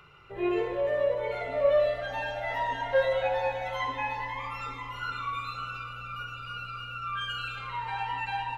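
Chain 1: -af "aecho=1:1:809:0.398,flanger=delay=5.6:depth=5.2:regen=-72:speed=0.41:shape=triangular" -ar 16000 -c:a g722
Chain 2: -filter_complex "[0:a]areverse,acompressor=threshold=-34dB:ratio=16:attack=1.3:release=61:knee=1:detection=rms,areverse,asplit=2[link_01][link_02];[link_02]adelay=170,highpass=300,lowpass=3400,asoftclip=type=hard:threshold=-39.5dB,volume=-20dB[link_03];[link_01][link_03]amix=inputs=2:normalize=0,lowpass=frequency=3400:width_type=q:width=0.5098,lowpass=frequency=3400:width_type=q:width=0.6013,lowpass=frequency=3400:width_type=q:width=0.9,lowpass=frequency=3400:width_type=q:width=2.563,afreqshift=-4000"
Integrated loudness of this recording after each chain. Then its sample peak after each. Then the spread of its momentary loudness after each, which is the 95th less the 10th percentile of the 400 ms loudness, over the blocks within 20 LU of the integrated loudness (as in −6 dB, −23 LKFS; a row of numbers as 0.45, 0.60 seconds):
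−34.5, −36.0 LKFS; −17.5, −28.5 dBFS; 10, 3 LU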